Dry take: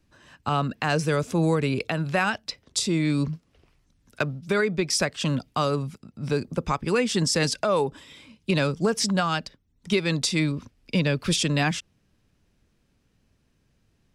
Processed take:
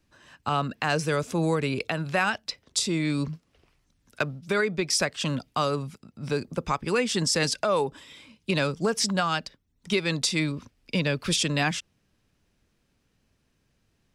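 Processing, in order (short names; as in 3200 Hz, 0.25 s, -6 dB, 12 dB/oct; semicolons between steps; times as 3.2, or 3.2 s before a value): low shelf 390 Hz -4.5 dB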